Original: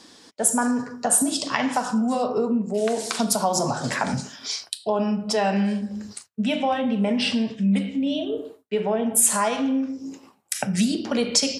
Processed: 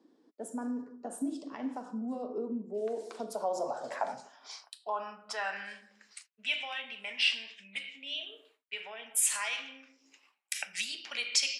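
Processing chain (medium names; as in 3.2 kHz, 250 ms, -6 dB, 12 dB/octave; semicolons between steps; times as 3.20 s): band-pass sweep 300 Hz -> 2.4 kHz, 2.60–6.34 s; RIAA curve recording; tape noise reduction on one side only decoder only; trim -2.5 dB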